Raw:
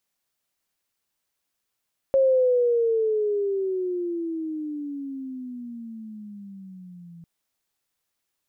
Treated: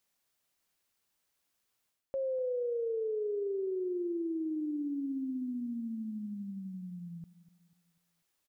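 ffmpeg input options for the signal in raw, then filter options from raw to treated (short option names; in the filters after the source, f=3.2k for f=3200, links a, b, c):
-f lavfi -i "aevalsrc='pow(10,(-15-26.5*t/5.1)/20)*sin(2*PI*543*5.1/(-20.5*log(2)/12)*(exp(-20.5*log(2)/12*t/5.1)-1))':d=5.1:s=44100"
-af "areverse,acompressor=threshold=-33dB:ratio=8,areverse,aecho=1:1:246|492|738|984:0.141|0.0607|0.0261|0.0112"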